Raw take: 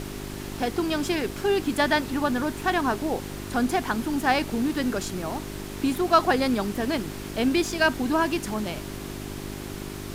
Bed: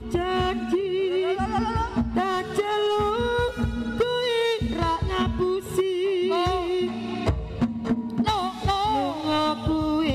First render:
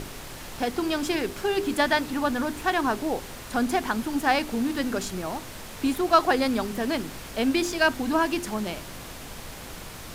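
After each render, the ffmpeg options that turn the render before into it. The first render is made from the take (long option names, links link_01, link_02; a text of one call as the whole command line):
ffmpeg -i in.wav -af "bandreject=frequency=50:width_type=h:width=4,bandreject=frequency=100:width_type=h:width=4,bandreject=frequency=150:width_type=h:width=4,bandreject=frequency=200:width_type=h:width=4,bandreject=frequency=250:width_type=h:width=4,bandreject=frequency=300:width_type=h:width=4,bandreject=frequency=350:width_type=h:width=4,bandreject=frequency=400:width_type=h:width=4" out.wav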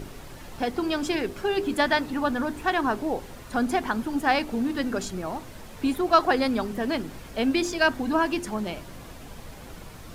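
ffmpeg -i in.wav -af "afftdn=noise_reduction=8:noise_floor=-40" out.wav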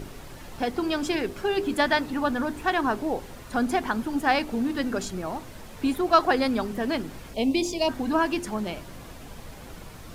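ffmpeg -i in.wav -filter_complex "[0:a]asplit=3[link_01][link_02][link_03];[link_01]afade=type=out:start_time=7.33:duration=0.02[link_04];[link_02]asuperstop=centerf=1500:order=4:qfactor=1.1,afade=type=in:start_time=7.33:duration=0.02,afade=type=out:start_time=7.88:duration=0.02[link_05];[link_03]afade=type=in:start_time=7.88:duration=0.02[link_06];[link_04][link_05][link_06]amix=inputs=3:normalize=0" out.wav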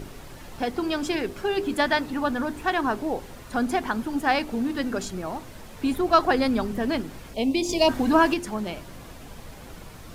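ffmpeg -i in.wav -filter_complex "[0:a]asettb=1/sr,asplit=3[link_01][link_02][link_03];[link_01]atrim=end=5.914[link_04];[link_02]atrim=start=5.91:end=7.01,asetpts=PTS-STARTPTS,afade=type=in:duration=0.004:curve=qsin,afade=type=out:start_time=1.096:duration=0.004:curve=qsin,lowshelf=frequency=190:gain=6[link_05];[link_03]atrim=start=7.006[link_06];[link_04][link_05]acrossfade=duration=0.004:curve1=hsin:curve2=qsin[link_07];[link_07][link_06]acrossfade=duration=0.004:curve1=qsin:curve2=hsin,asettb=1/sr,asplit=3[link_08][link_09][link_10];[link_08]atrim=end=7.694[link_11];[link_09]atrim=start=7.69:end=8.34,asetpts=PTS-STARTPTS,afade=type=in:duration=0.004:curve=qsin,afade=type=out:start_time=0.646:duration=0.004:curve=qsin,acontrast=30[link_12];[link_10]atrim=start=8.336[link_13];[link_11][link_12]acrossfade=duration=0.004:curve1=hsin:curve2=qsin[link_14];[link_14][link_13]acrossfade=duration=0.004:curve1=qsin:curve2=hsin" out.wav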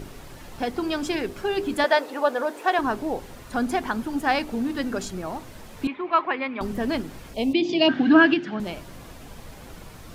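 ffmpeg -i in.wav -filter_complex "[0:a]asettb=1/sr,asplit=3[link_01][link_02][link_03];[link_01]atrim=end=1.844[link_04];[link_02]atrim=start=1.84:end=2.79,asetpts=PTS-STARTPTS,afade=type=in:duration=0.004:curve=qsin,afade=type=out:start_time=0.946:duration=0.004:curve=qsin,highpass=frequency=500:width_type=q:width=2.7[link_05];[link_03]atrim=start=2.786[link_06];[link_04][link_05]acrossfade=duration=0.004:curve1=hsin:curve2=qsin[link_07];[link_07][link_06]acrossfade=duration=0.004:curve1=qsin:curve2=hsin,asettb=1/sr,asplit=3[link_08][link_09][link_10];[link_08]atrim=end=5.874[link_11];[link_09]atrim=start=5.87:end=6.61,asetpts=PTS-STARTPTS,afade=type=in:duration=0.004:curve=qsin,afade=type=out:start_time=0.736:duration=0.004:curve=qsin,highpass=420,equalizer=frequency=470:width_type=q:width=4:gain=-8,equalizer=frequency=730:width_type=q:width=4:gain=-9,equalizer=frequency=1000:width_type=q:width=4:gain=4,equalizer=frequency=1500:width_type=q:width=4:gain=-5,equalizer=frequency=2300:width_type=q:width=4:gain=7,lowpass=frequency=2800:width=0.5412,lowpass=frequency=2800:width=1.3066[link_12];[link_10]atrim=start=6.606[link_13];[link_11][link_12]acrossfade=duration=0.004:curve1=hsin:curve2=qsin[link_14];[link_14][link_13]acrossfade=duration=0.004:curve1=qsin:curve2=hsin,asettb=1/sr,asplit=3[link_15][link_16][link_17];[link_15]atrim=end=7.534[link_18];[link_16]atrim=start=7.53:end=8.6,asetpts=PTS-STARTPTS,afade=type=in:duration=0.004:curve=qsin,afade=type=out:start_time=1.066:duration=0.004:curve=qsin,highpass=frequency=140:width=0.5412,highpass=frequency=140:width=1.3066,equalizer=frequency=150:width_type=q:width=4:gain=6,equalizer=frequency=300:width_type=q:width=4:gain=8,equalizer=frequency=500:width_type=q:width=4:gain=-6,equalizer=frequency=1000:width_type=q:width=4:gain=-7,equalizer=frequency=1600:width_type=q:width=4:gain=9,equalizer=frequency=3000:width_type=q:width=4:gain=6,lowpass=frequency=4200:width=0.5412,lowpass=frequency=4200:width=1.3066[link_19];[link_17]atrim=start=8.596[link_20];[link_18][link_19]acrossfade=duration=0.004:curve1=hsin:curve2=qsin[link_21];[link_21][link_20]acrossfade=duration=0.004:curve1=qsin:curve2=hsin" out.wav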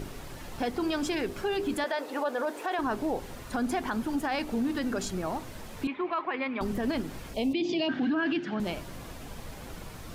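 ffmpeg -i in.wav -af "acompressor=threshold=-28dB:ratio=1.5,alimiter=limit=-21.5dB:level=0:latency=1:release=17" out.wav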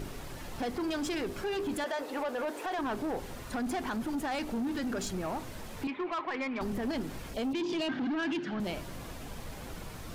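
ffmpeg -i in.wav -af "asoftclip=type=tanh:threshold=-28.5dB" out.wav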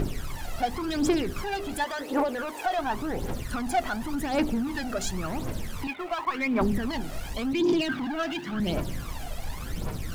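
ffmpeg -i in.wav -filter_complex "[0:a]aphaser=in_gain=1:out_gain=1:delay=1.6:decay=0.68:speed=0.91:type=triangular,asplit=2[link_01][link_02];[link_02]aeval=exprs='val(0)*gte(abs(val(0)),0.0112)':channel_layout=same,volume=-8dB[link_03];[link_01][link_03]amix=inputs=2:normalize=0" out.wav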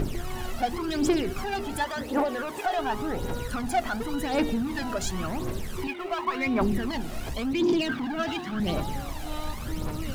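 ffmpeg -i in.wav -i bed.wav -filter_complex "[1:a]volume=-15dB[link_01];[0:a][link_01]amix=inputs=2:normalize=0" out.wav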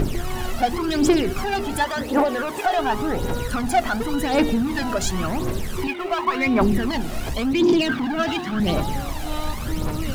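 ffmpeg -i in.wav -af "volume=6.5dB" out.wav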